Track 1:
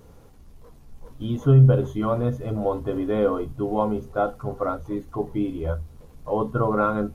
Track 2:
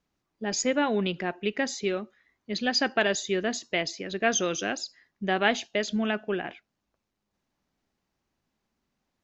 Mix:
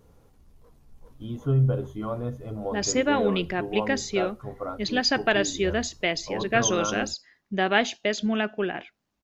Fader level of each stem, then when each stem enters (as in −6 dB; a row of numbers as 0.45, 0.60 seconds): −7.5, +2.0 decibels; 0.00, 2.30 seconds